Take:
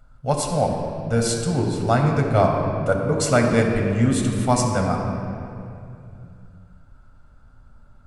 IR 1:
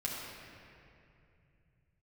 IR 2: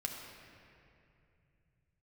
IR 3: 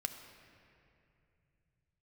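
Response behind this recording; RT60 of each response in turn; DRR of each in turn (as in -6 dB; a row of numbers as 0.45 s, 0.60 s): 2; 2.6 s, 2.6 s, 2.6 s; -5.5 dB, 0.0 dB, 6.0 dB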